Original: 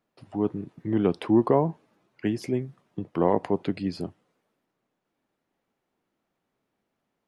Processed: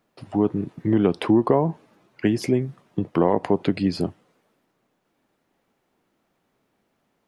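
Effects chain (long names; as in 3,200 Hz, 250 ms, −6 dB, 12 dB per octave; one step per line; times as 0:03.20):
downward compressor 3 to 1, threshold −24 dBFS, peak gain reduction 7.5 dB
level +8.5 dB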